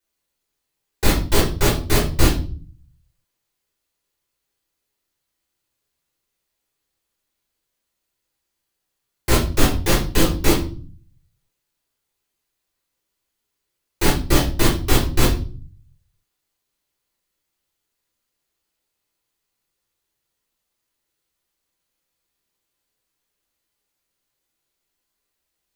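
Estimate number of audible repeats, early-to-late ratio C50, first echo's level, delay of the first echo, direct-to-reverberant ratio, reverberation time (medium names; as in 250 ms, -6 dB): no echo, 7.5 dB, no echo, no echo, -5.5 dB, 0.40 s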